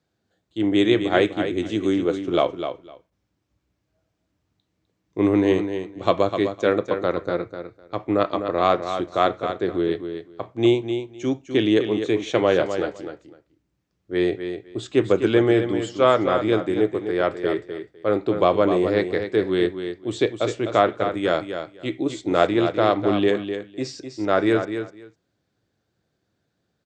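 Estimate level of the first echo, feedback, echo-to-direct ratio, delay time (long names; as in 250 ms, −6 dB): −8.5 dB, 16%, −8.5 dB, 253 ms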